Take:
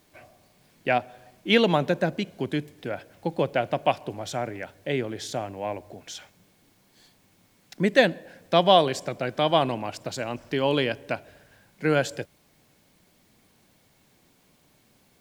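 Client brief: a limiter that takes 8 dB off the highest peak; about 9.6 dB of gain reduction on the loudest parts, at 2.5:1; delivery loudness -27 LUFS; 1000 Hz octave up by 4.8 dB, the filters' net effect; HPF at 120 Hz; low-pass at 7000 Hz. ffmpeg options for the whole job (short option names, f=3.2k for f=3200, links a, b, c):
-af "highpass=120,lowpass=7k,equalizer=f=1k:t=o:g=7,acompressor=threshold=-24dB:ratio=2.5,volume=5dB,alimiter=limit=-12.5dB:level=0:latency=1"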